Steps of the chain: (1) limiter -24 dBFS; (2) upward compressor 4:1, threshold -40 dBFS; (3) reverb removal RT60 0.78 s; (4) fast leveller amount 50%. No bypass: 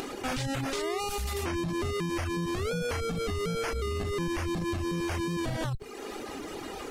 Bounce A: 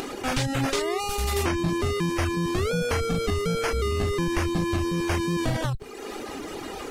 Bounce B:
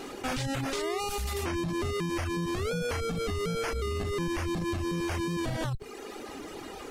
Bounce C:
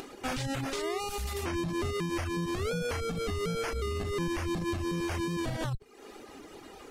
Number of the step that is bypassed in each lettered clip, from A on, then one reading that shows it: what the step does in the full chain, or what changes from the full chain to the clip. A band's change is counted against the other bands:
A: 1, mean gain reduction 3.0 dB; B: 2, momentary loudness spread change +2 LU; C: 4, momentary loudness spread change +8 LU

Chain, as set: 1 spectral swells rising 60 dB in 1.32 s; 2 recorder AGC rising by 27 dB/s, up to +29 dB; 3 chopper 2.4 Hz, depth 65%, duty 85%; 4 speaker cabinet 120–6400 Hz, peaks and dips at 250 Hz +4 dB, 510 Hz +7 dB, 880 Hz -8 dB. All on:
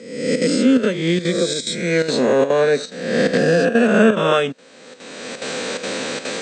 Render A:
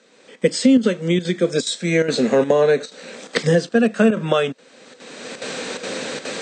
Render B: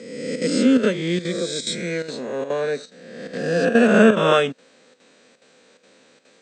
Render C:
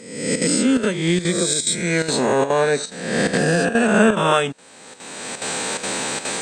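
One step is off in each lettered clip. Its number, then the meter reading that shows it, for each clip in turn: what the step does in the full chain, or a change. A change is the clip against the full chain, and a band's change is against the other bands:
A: 1, 125 Hz band +2.5 dB; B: 2, crest factor change +3.0 dB; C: 4, momentary loudness spread change -1 LU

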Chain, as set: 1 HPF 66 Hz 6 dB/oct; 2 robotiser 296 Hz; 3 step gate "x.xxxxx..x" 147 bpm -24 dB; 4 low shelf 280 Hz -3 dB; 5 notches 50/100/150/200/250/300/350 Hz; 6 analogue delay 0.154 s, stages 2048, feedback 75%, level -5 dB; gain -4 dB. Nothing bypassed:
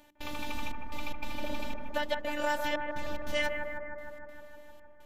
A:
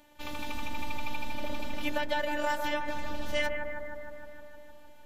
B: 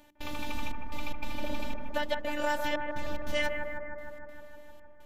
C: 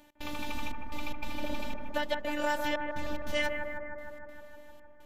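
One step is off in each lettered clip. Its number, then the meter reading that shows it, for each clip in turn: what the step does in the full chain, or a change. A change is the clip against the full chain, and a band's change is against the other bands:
3, crest factor change -1.5 dB; 4, crest factor change -2.0 dB; 5, 250 Hz band +2.5 dB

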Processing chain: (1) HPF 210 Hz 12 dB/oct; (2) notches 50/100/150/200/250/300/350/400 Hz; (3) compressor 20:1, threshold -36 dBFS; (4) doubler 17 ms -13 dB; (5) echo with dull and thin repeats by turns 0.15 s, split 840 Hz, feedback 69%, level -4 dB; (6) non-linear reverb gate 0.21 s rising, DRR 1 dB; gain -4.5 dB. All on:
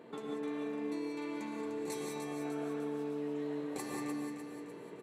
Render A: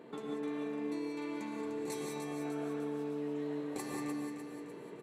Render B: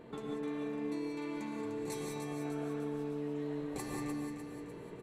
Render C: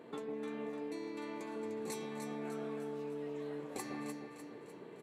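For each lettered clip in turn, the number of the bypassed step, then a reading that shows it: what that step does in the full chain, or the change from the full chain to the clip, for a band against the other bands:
2, 125 Hz band +2.0 dB; 1, 125 Hz band +7.0 dB; 6, momentary loudness spread change +3 LU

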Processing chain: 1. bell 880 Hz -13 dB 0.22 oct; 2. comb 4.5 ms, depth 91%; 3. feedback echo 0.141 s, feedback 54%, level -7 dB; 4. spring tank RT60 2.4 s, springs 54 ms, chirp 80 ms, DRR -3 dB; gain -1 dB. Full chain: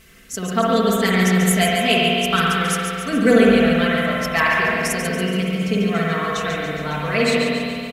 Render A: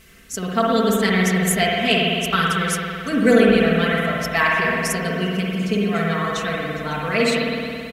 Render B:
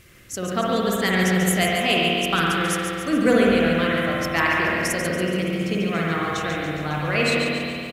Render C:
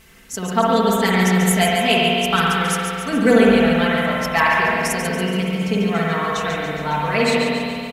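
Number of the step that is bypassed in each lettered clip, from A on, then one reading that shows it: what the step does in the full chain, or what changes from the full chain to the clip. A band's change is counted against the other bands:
3, loudness change -1.0 LU; 2, loudness change -3.0 LU; 1, 1 kHz band +2.5 dB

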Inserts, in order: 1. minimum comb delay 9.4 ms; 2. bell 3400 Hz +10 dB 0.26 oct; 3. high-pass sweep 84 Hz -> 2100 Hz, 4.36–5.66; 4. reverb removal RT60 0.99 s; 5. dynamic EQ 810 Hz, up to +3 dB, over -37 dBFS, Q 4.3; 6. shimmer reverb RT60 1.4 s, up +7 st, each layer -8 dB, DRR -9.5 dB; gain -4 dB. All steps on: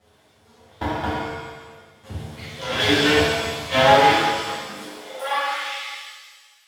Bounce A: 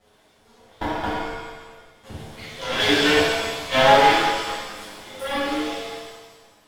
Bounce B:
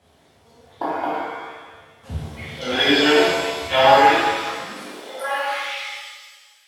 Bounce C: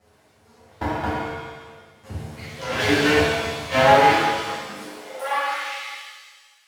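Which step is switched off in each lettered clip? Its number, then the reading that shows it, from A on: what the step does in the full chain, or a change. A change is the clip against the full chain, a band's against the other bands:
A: 3, momentary loudness spread change +2 LU; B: 1, 125 Hz band -6.0 dB; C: 2, 4 kHz band -4.5 dB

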